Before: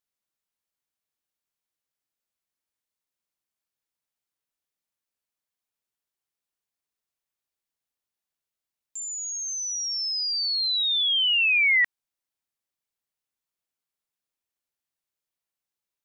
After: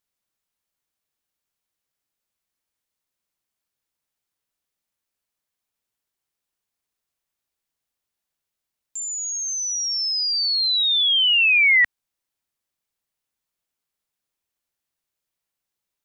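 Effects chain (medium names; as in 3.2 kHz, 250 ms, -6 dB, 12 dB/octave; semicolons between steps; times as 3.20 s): bass shelf 130 Hz +3.5 dB; trim +4.5 dB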